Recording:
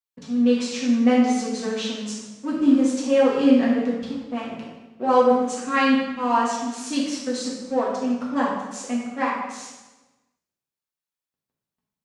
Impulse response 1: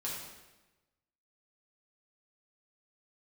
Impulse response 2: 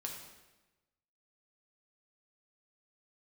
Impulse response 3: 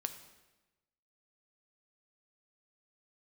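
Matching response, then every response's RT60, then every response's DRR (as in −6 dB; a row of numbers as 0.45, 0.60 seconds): 1; 1.1, 1.1, 1.1 seconds; −6.0, −0.5, 8.0 decibels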